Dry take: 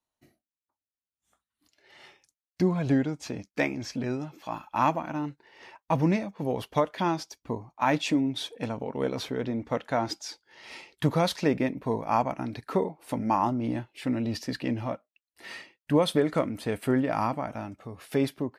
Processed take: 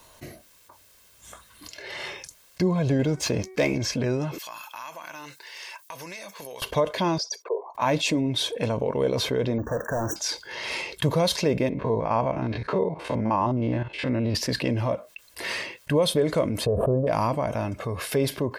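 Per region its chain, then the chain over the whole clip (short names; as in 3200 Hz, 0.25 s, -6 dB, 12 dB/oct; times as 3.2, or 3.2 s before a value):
2.99–3.78 de-hum 376 Hz, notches 6 + sample leveller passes 1
4.38–6.62 differentiator + compressor 4:1, threshold -58 dBFS
7.18–7.75 formant sharpening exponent 2 + steep high-pass 390 Hz 72 dB/oct + bell 2900 Hz -8.5 dB 0.27 oct
9.58–10.16 hard clip -31 dBFS + careless resampling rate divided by 2×, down filtered, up hold + brick-wall FIR band-stop 1900–5600 Hz
11.69–14.35 stepped spectrum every 50 ms + LPF 3700 Hz
16.66–17.07 inverse Chebyshev low-pass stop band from 1900 Hz + comb 1.7 ms, depth 56% + backwards sustainer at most 50 dB/s
whole clip: comb 1.9 ms, depth 45%; dynamic EQ 1500 Hz, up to -7 dB, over -42 dBFS, Q 1.1; fast leveller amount 50%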